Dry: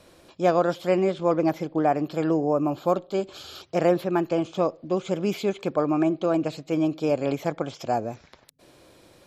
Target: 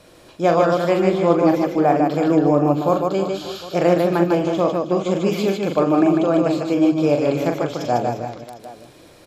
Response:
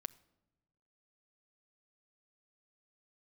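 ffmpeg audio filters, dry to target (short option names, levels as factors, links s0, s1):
-filter_complex "[0:a]aecho=1:1:41|150|315|349|585|754:0.501|0.668|0.211|0.211|0.133|0.133,asplit=2[s0][s1];[1:a]atrim=start_sample=2205[s2];[s1][s2]afir=irnorm=-1:irlink=0,volume=3.55[s3];[s0][s3]amix=inputs=2:normalize=0,volume=0.473"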